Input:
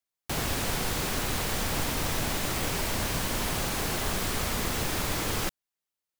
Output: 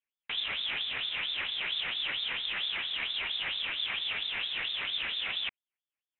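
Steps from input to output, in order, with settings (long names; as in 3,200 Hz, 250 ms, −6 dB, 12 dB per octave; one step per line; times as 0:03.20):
auto-filter band-pass sine 4.4 Hz 360–1,800 Hz
voice inversion scrambler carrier 3,900 Hz
level +6.5 dB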